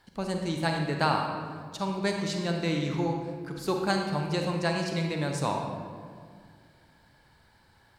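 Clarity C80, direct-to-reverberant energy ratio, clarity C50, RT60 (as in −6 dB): 5.0 dB, 2.0 dB, 3.0 dB, 2.0 s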